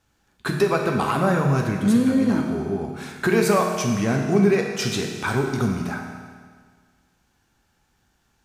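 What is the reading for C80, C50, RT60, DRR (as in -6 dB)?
5.0 dB, 3.5 dB, 1.7 s, 1.0 dB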